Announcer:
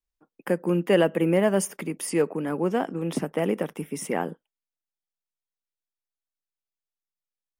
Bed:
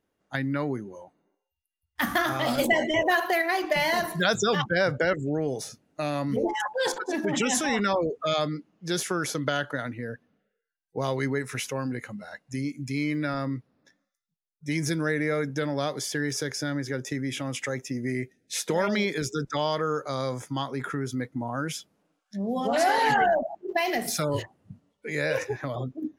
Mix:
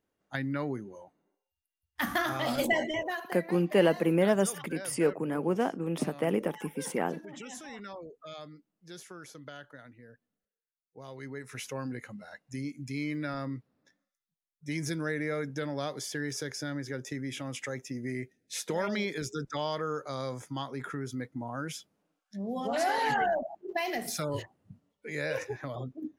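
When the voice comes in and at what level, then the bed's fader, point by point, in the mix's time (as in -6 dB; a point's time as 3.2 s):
2.85 s, -3.5 dB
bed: 2.8 s -4.5 dB
3.41 s -18.5 dB
11.04 s -18.5 dB
11.73 s -6 dB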